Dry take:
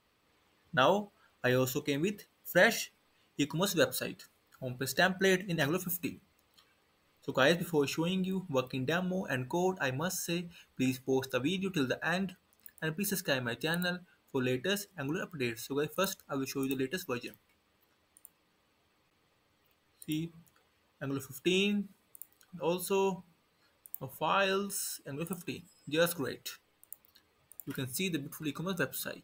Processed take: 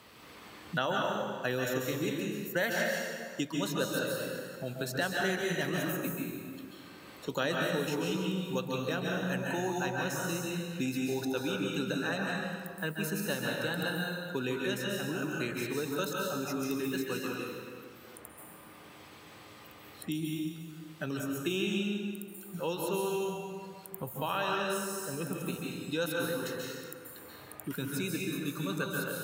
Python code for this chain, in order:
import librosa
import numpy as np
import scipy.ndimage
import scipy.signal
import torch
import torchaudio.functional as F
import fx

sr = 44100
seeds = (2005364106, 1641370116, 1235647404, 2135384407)

y = scipy.signal.sosfilt(scipy.signal.butter(2, 81.0, 'highpass', fs=sr, output='sos'), x)
y = fx.rev_plate(y, sr, seeds[0], rt60_s=1.3, hf_ratio=0.75, predelay_ms=120, drr_db=-1.5)
y = fx.band_squash(y, sr, depth_pct=70)
y = y * 10.0 ** (-4.0 / 20.0)